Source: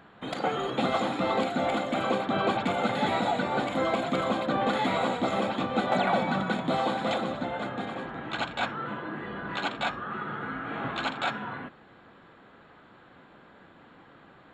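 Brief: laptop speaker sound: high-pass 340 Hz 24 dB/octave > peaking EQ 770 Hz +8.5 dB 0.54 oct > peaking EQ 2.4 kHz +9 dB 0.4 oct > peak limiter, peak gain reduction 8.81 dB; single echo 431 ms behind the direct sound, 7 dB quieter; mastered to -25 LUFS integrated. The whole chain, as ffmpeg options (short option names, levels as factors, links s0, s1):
-af "highpass=f=340:w=0.5412,highpass=f=340:w=1.3066,equalizer=f=770:t=o:w=0.54:g=8.5,equalizer=f=2400:t=o:w=0.4:g=9,aecho=1:1:431:0.447,volume=1.33,alimiter=limit=0.168:level=0:latency=1"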